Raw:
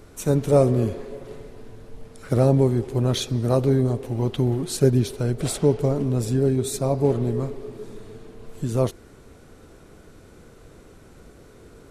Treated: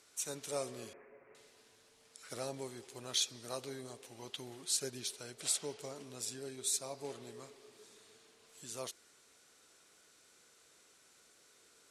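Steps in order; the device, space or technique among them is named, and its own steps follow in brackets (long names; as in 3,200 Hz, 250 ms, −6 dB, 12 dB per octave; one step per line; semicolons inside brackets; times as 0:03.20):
piezo pickup straight into a mixer (low-pass filter 7,300 Hz 12 dB per octave; first difference)
0:00.93–0:01.35: Butterworth low-pass 2,400 Hz 72 dB per octave
level +1 dB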